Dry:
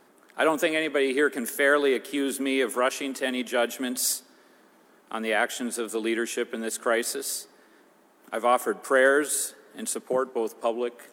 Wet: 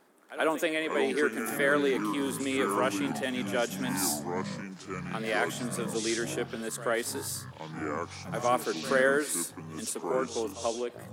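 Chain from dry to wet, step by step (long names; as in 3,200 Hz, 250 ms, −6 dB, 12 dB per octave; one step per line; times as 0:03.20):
delay with pitch and tempo change per echo 335 ms, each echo −6 semitones, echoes 3, each echo −6 dB
echo ahead of the sound 83 ms −15 dB
level −5 dB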